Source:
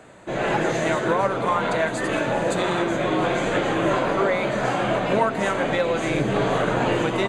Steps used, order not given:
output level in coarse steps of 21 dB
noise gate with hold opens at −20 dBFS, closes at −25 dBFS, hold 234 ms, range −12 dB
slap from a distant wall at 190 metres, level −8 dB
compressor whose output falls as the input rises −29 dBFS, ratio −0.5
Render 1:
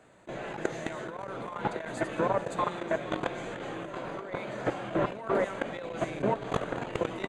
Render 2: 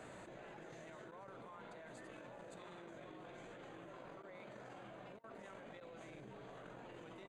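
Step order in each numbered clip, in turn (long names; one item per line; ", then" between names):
noise gate with hold, then output level in coarse steps, then slap from a distant wall, then compressor whose output falls as the input rises
slap from a distant wall, then compressor whose output falls as the input rises, then output level in coarse steps, then noise gate with hold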